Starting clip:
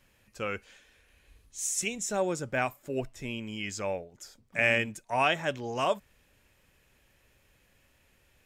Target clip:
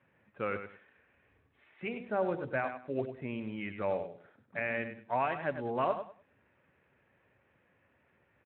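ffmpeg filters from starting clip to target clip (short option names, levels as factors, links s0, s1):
-filter_complex "[0:a]lowpass=f=2100:w=0.5412,lowpass=f=2100:w=1.3066,lowshelf=f=150:g=-4,asplit=3[s0][s1][s2];[s0]afade=t=out:st=1.73:d=0.02[s3];[s1]bandreject=f=50:t=h:w=6,bandreject=f=100:t=h:w=6,bandreject=f=150:t=h:w=6,bandreject=f=200:t=h:w=6,bandreject=f=250:t=h:w=6,bandreject=f=300:t=h:w=6,bandreject=f=350:t=h:w=6,bandreject=f=400:t=h:w=6,bandreject=f=450:t=h:w=6,bandreject=f=500:t=h:w=6,afade=t=in:st=1.73:d=0.02,afade=t=out:st=3.07:d=0.02[s4];[s2]afade=t=in:st=3.07:d=0.02[s5];[s3][s4][s5]amix=inputs=3:normalize=0,alimiter=limit=0.0841:level=0:latency=1:release=406,aecho=1:1:99|198|297:0.355|0.0816|0.0188" -ar 8000 -c:a libspeex -b:a 15k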